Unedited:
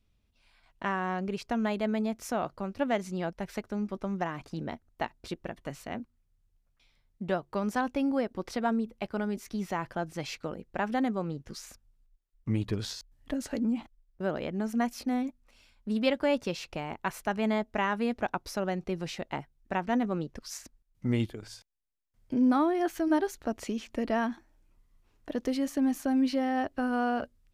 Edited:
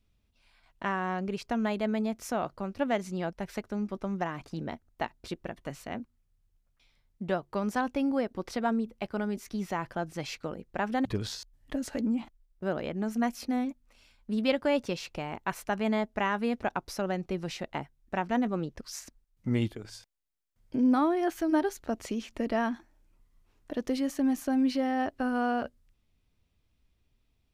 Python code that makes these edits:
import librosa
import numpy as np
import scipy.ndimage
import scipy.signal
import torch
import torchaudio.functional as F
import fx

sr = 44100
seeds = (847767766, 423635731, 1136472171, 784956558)

y = fx.edit(x, sr, fx.cut(start_s=11.05, length_s=1.58), tone=tone)